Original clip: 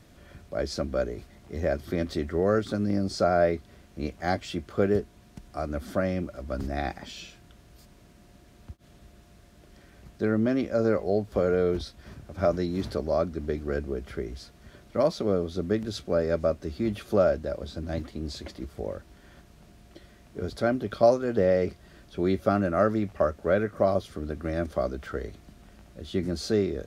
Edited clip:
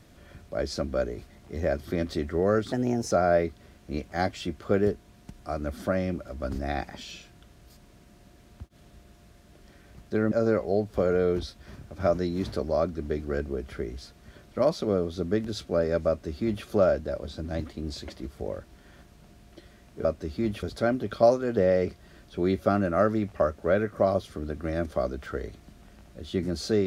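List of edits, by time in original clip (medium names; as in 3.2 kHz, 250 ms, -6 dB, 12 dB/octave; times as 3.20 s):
2.72–3.20 s: speed 121%
10.40–10.70 s: delete
16.46–17.04 s: copy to 20.43 s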